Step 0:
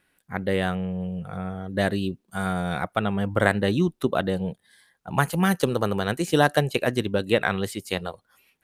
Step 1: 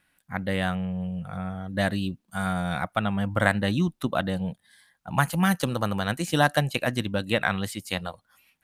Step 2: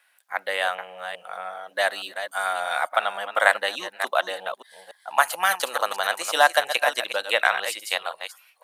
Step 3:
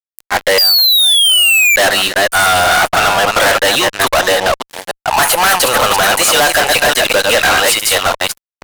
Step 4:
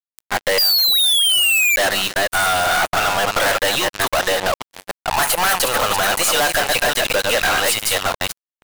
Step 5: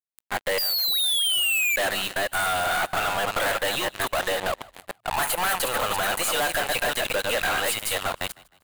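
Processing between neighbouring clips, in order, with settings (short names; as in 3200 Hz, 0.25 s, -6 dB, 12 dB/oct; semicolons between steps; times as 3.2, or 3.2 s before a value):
bell 410 Hz -12.5 dB 0.51 oct
reverse delay 0.289 s, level -9 dB; HPF 580 Hz 24 dB/oct; gain +5.5 dB
painted sound fall, 0.58–1.76, 2300–4900 Hz -11 dBFS; fuzz box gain 39 dB, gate -44 dBFS; gain +4.5 dB
power-law curve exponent 3
bell 5500 Hz -7.5 dB 0.51 oct; frequency-shifting echo 0.155 s, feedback 37%, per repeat +38 Hz, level -22.5 dB; gain -7 dB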